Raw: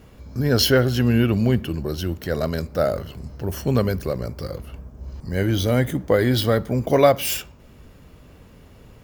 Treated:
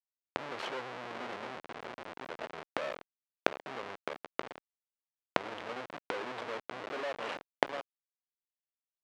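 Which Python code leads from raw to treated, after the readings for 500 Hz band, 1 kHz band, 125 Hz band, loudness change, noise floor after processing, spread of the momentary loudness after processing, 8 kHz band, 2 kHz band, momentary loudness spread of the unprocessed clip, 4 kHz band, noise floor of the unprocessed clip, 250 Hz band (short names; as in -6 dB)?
-18.0 dB, -9.0 dB, -35.5 dB, -18.0 dB, under -85 dBFS, 9 LU, -24.5 dB, -9.5 dB, 16 LU, -17.5 dB, -48 dBFS, -24.5 dB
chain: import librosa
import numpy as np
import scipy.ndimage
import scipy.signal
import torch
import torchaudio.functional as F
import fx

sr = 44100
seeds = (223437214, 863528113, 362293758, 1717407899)

y = fx.tracing_dist(x, sr, depth_ms=0.2)
y = y + 10.0 ** (-10.0 / 20.0) * np.pad(y, (int(698 * sr / 1000.0), 0))[:len(y)]
y = fx.schmitt(y, sr, flips_db=-21.5)
y = fx.gate_flip(y, sr, shuts_db=-22.0, range_db=-25)
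y = fx.bandpass_edges(y, sr, low_hz=540.0, high_hz=3000.0)
y = y * librosa.db_to_amplitude(14.5)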